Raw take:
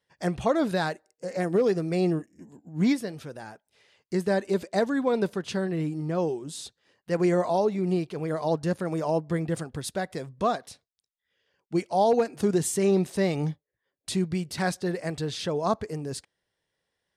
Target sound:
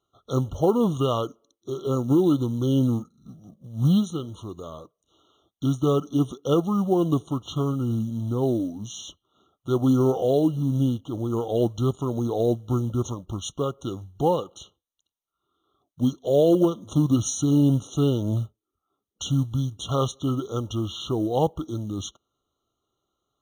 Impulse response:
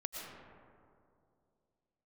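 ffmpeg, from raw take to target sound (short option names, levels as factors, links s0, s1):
-af "asetrate=32325,aresample=44100,acrusher=bits=7:mode=log:mix=0:aa=0.000001,afftfilt=real='re*eq(mod(floor(b*sr/1024/1400),2),0)':imag='im*eq(mod(floor(b*sr/1024/1400),2),0)':win_size=1024:overlap=0.75,volume=1.41"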